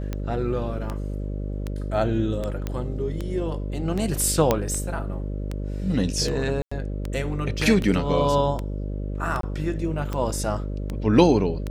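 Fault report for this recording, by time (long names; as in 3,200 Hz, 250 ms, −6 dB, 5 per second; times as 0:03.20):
mains buzz 50 Hz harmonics 12 −29 dBFS
scratch tick 78 rpm −16 dBFS
0:02.67: click −15 dBFS
0:04.51: click −5 dBFS
0:06.62–0:06.71: drop-out 95 ms
0:09.41–0:09.43: drop-out 23 ms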